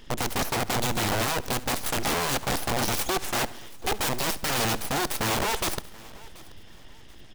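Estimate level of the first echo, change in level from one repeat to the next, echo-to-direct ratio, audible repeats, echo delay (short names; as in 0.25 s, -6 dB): -20.0 dB, no steady repeat, -16.5 dB, 5, 69 ms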